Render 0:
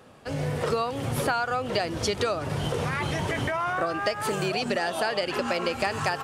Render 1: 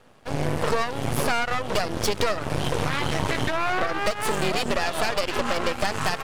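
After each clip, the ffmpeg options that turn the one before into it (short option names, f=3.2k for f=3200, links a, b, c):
-af "aeval=exprs='max(val(0),0)':c=same,aeval=exprs='0.211*(cos(1*acos(clip(val(0)/0.211,-1,1)))-cos(1*PI/2))+0.0668*(cos(6*acos(clip(val(0)/0.211,-1,1)))-cos(6*PI/2))':c=same"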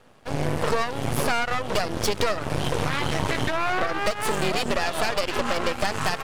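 -af anull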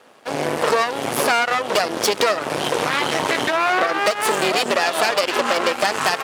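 -af "highpass=310,volume=7dB"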